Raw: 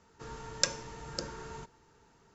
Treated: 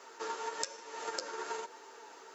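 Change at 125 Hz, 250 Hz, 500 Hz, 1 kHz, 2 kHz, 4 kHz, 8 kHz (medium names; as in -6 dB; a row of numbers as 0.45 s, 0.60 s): under -25 dB, -5.5 dB, +2.0 dB, +6.0 dB, -0.5 dB, -7.0 dB, no reading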